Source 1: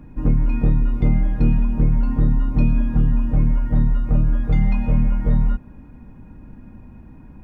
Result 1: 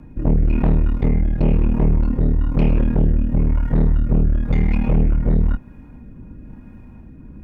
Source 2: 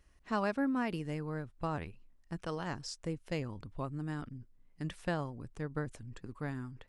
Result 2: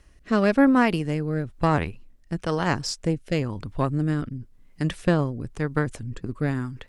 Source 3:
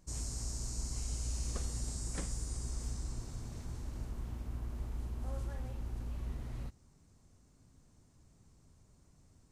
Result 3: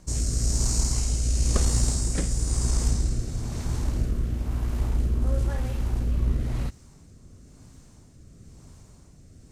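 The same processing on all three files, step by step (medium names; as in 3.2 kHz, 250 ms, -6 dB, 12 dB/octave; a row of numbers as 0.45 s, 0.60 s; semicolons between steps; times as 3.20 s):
rotary cabinet horn 1 Hz; Chebyshev shaper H 5 -14 dB, 8 -13 dB, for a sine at -5 dBFS; peak normalisation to -6 dBFS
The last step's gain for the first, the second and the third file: -2.5 dB, +8.5 dB, +10.0 dB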